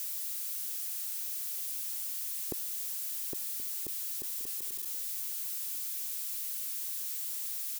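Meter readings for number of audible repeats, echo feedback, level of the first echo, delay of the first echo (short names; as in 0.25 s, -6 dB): 2, 28%, -17.0 dB, 1.077 s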